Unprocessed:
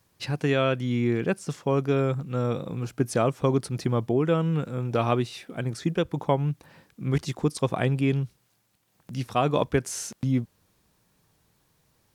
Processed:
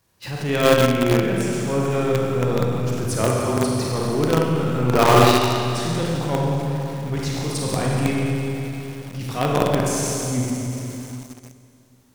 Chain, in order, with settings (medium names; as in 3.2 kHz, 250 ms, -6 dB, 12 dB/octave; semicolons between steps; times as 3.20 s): transient shaper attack -10 dB, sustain +4 dB; 2.92–3.57 s: frequency shift -17 Hz; 4.78–5.33 s: overdrive pedal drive 23 dB, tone 1.9 kHz, clips at -11 dBFS; Schroeder reverb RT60 2.8 s, combs from 32 ms, DRR -4 dB; in parallel at -11 dB: companded quantiser 2-bit